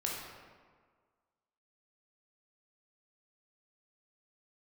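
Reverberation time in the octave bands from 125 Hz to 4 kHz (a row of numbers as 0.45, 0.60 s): 1.5, 1.6, 1.7, 1.6, 1.3, 0.95 s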